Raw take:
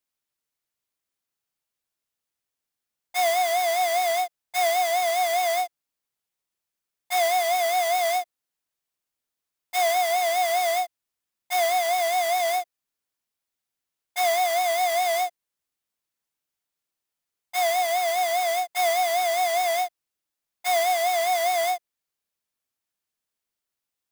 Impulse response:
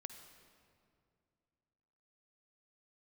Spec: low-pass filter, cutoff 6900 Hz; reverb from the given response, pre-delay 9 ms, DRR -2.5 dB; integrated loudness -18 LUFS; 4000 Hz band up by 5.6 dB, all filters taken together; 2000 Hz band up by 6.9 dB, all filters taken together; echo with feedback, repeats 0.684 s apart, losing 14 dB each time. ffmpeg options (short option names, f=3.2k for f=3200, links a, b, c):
-filter_complex "[0:a]lowpass=6.9k,equalizer=f=2k:t=o:g=6,equalizer=f=4k:t=o:g=5.5,aecho=1:1:684|1368:0.2|0.0399,asplit=2[a][b];[1:a]atrim=start_sample=2205,adelay=9[c];[b][c]afir=irnorm=-1:irlink=0,volume=7dB[d];[a][d]amix=inputs=2:normalize=0,volume=-1dB"